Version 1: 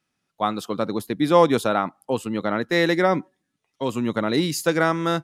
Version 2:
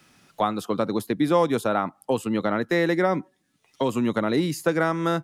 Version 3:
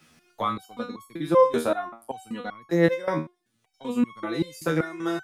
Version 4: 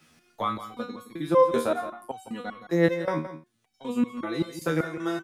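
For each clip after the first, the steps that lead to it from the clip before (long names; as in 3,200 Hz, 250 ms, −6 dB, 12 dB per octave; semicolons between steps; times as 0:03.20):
dynamic equaliser 4,000 Hz, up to −5 dB, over −39 dBFS, Q 0.77; multiband upward and downward compressor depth 70%; level −1.5 dB
step-sequenced resonator 5.2 Hz 79–1,100 Hz; level +8 dB
single-tap delay 169 ms −12.5 dB; level −1.5 dB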